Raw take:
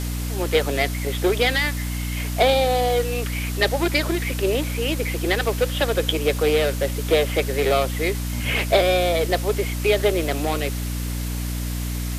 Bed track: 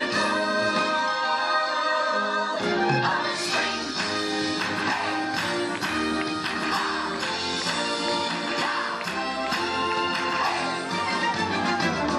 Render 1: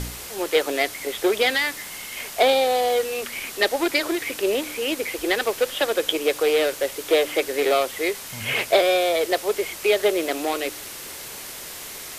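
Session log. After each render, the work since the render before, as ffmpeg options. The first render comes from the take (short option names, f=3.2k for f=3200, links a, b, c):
-af "bandreject=f=60:t=h:w=4,bandreject=f=120:t=h:w=4,bandreject=f=180:t=h:w=4,bandreject=f=240:t=h:w=4,bandreject=f=300:t=h:w=4"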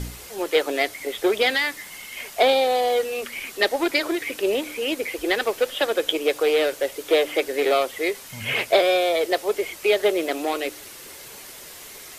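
-af "afftdn=nr=6:nf=-37"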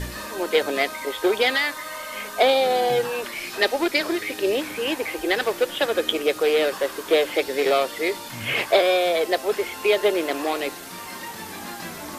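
-filter_complex "[1:a]volume=-11.5dB[a];[0:a][a]amix=inputs=2:normalize=0"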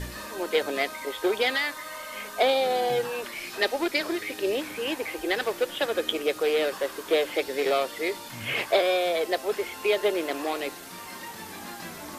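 -af "volume=-4.5dB"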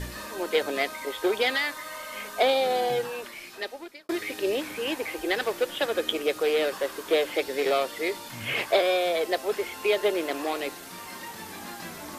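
-filter_complex "[0:a]asplit=2[a][b];[a]atrim=end=4.09,asetpts=PTS-STARTPTS,afade=t=out:st=2.8:d=1.29[c];[b]atrim=start=4.09,asetpts=PTS-STARTPTS,afade=t=in:d=0.004:c=hsin[d];[c][d]concat=n=2:v=0:a=1"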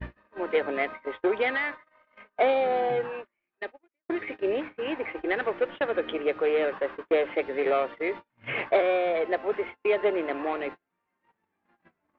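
-af "lowpass=f=2.4k:w=0.5412,lowpass=f=2.4k:w=1.3066,agate=range=-38dB:threshold=-35dB:ratio=16:detection=peak"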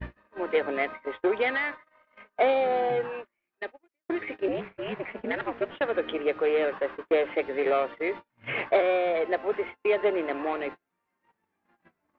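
-filter_complex "[0:a]asettb=1/sr,asplit=3[a][b][c];[a]atrim=end=4.484[d];[b]atrim=start=4.48:end=5.71,asetpts=PTS-STARTPTS,afade=t=in:d=0.004:c=qsin,afade=t=out:st=1.226:d=0.004:c=qsin,aeval=exprs='val(0)*sin(2*PI*110*n/s)':c=same[e];[c]atrim=start=5.706[f];[d][e]acrossfade=d=0.004:c1=hsin:c2=qsin[g];[g][f]acrossfade=d=0.004:c1=qsin:c2=hsin"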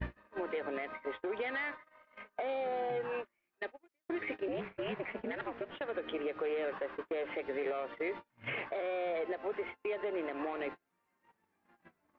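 -af "acompressor=threshold=-25dB:ratio=6,alimiter=level_in=4dB:limit=-24dB:level=0:latency=1:release=211,volume=-4dB"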